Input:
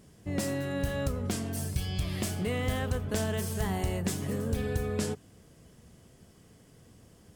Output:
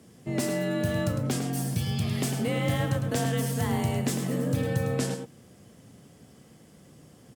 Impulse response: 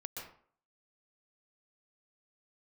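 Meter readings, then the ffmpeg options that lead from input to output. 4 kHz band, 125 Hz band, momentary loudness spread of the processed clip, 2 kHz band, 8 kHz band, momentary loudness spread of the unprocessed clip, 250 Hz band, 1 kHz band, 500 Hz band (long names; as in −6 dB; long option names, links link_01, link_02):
+3.5 dB, +5.0 dB, 3 LU, +3.0 dB, +3.0 dB, 3 LU, +4.5 dB, +4.5 dB, +3.5 dB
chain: -filter_complex "[0:a]afreqshift=43,asplit=2[link_01][link_02];[link_02]adelay=105,volume=-7dB,highshelf=frequency=4000:gain=-2.36[link_03];[link_01][link_03]amix=inputs=2:normalize=0,volume=2.5dB"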